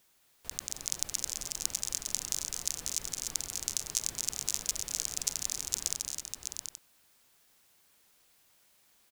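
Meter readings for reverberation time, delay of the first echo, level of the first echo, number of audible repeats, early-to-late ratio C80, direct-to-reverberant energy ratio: no reverb audible, 219 ms, −8.5 dB, 5, no reverb audible, no reverb audible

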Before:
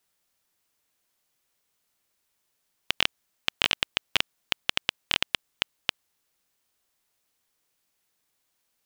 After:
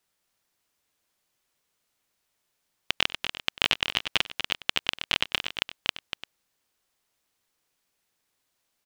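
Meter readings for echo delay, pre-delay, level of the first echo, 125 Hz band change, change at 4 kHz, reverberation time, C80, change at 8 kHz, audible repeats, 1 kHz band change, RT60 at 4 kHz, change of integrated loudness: 95 ms, no reverb audible, −19.5 dB, +1.0 dB, +0.5 dB, no reverb audible, no reverb audible, −1.0 dB, 3, +1.0 dB, no reverb audible, +0.5 dB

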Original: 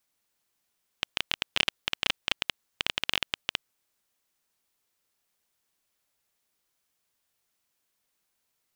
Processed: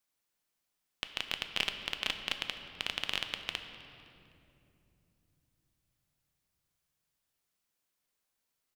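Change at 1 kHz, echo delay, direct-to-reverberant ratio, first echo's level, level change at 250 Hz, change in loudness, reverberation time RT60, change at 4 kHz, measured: −5.0 dB, 255 ms, 6.5 dB, −22.5 dB, −4.5 dB, −5.5 dB, 2.8 s, −5.5 dB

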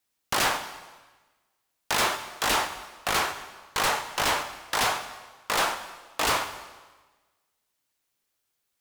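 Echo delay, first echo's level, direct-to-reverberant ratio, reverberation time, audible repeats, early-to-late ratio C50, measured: no echo audible, no echo audible, 8.0 dB, 1.3 s, no echo audible, 10.0 dB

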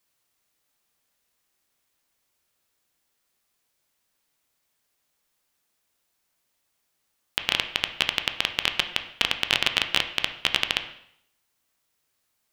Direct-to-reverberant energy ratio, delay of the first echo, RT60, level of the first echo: 6.5 dB, no echo audible, 0.70 s, no echo audible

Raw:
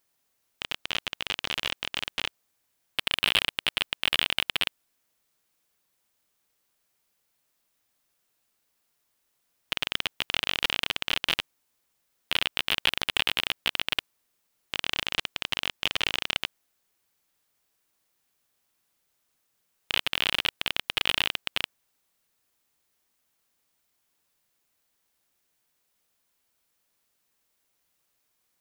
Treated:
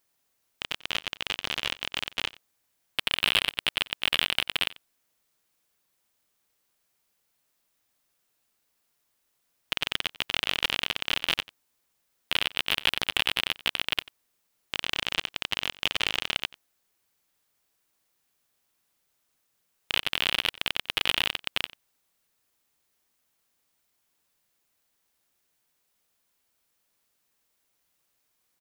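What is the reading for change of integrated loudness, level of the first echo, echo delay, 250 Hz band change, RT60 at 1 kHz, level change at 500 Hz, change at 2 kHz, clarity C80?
0.0 dB, −20.5 dB, 91 ms, 0.0 dB, no reverb audible, 0.0 dB, 0.0 dB, no reverb audible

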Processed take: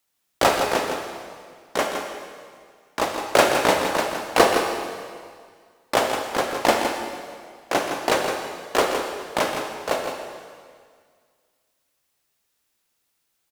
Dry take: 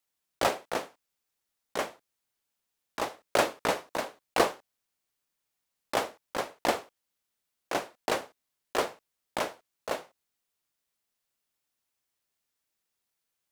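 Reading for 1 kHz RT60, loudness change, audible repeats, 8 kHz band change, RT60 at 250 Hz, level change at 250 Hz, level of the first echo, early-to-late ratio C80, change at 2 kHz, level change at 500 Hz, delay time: 1.9 s, +9.0 dB, 1, +10.0 dB, 1.9 s, +10.5 dB, −8.0 dB, 3.5 dB, +10.0 dB, +10.0 dB, 163 ms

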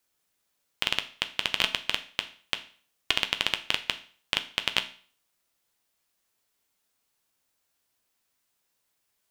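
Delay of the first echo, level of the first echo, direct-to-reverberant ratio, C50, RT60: no echo audible, no echo audible, 7.5 dB, 15.0 dB, 0.45 s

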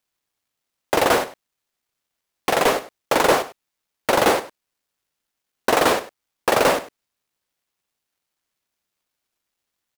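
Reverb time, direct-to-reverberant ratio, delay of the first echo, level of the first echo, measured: no reverb audible, no reverb audible, 99 ms, −16.5 dB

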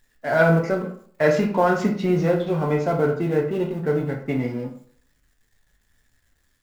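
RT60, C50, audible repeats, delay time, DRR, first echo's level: 0.55 s, 8.0 dB, no echo audible, no echo audible, 0.0 dB, no echo audible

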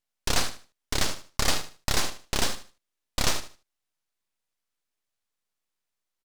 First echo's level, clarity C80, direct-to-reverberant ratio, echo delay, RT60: −12.0 dB, no reverb audible, no reverb audible, 76 ms, no reverb audible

